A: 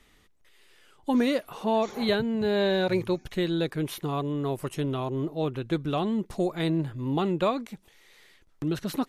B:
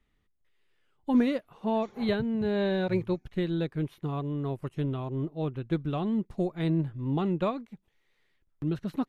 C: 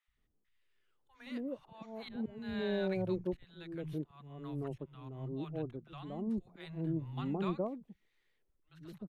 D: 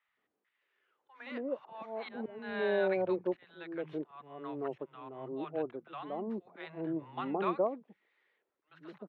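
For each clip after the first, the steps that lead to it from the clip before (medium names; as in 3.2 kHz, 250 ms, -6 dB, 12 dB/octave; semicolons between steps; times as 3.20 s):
tone controls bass +7 dB, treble -9 dB; upward expansion 1.5:1, over -45 dBFS; trim -2 dB
slow attack 407 ms; three bands offset in time highs, lows, mids 70/170 ms, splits 150/860 Hz; trim -5.5 dB
band-pass 460–2100 Hz; trim +9 dB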